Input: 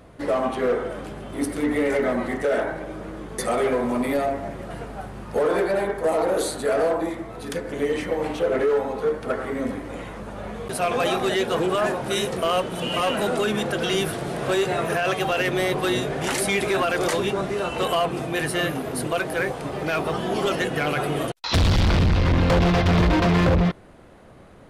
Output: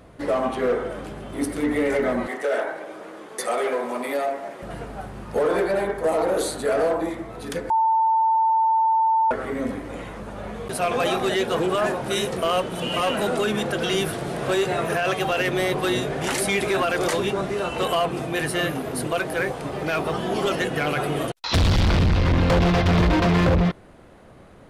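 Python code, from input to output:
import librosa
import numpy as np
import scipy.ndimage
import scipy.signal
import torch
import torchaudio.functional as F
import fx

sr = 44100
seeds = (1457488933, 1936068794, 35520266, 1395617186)

y = fx.highpass(x, sr, hz=410.0, slope=12, at=(2.27, 4.62))
y = fx.edit(y, sr, fx.bleep(start_s=7.7, length_s=1.61, hz=893.0, db=-16.0), tone=tone)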